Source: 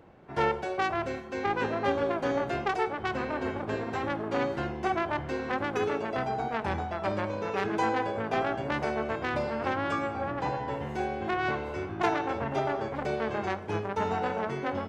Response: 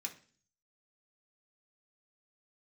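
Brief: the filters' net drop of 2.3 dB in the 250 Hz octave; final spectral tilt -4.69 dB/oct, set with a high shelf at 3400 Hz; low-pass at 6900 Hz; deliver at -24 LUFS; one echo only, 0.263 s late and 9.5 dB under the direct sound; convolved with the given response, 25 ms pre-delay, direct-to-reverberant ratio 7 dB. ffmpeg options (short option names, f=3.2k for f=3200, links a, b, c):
-filter_complex "[0:a]lowpass=6.9k,equalizer=f=250:t=o:g=-3,highshelf=f=3.4k:g=-8.5,aecho=1:1:263:0.335,asplit=2[a][b];[1:a]atrim=start_sample=2205,adelay=25[c];[b][c]afir=irnorm=-1:irlink=0,volume=-5.5dB[d];[a][d]amix=inputs=2:normalize=0,volume=7dB"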